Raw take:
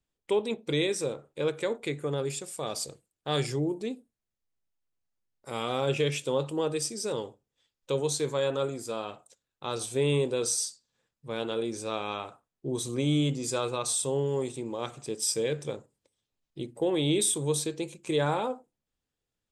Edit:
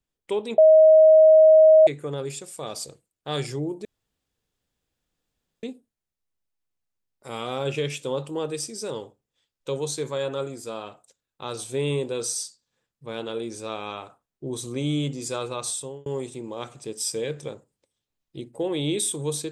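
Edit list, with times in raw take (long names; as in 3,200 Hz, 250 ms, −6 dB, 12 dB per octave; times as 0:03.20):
0:00.58–0:01.87: beep over 630 Hz −9.5 dBFS
0:03.85: splice in room tone 1.78 s
0:13.91–0:14.28: fade out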